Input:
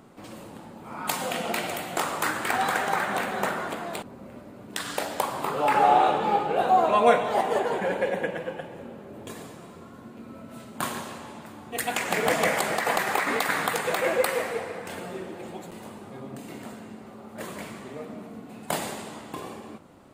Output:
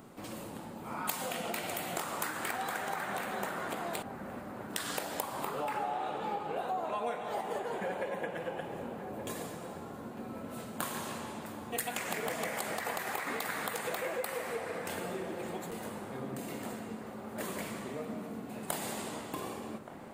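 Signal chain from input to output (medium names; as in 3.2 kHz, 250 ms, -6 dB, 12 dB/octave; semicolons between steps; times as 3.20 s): compression 6:1, threshold -33 dBFS, peak gain reduction 18.5 dB; treble shelf 10 kHz +8.5 dB; feedback echo behind a low-pass 1174 ms, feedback 58%, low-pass 1.6 kHz, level -10.5 dB; trim -1 dB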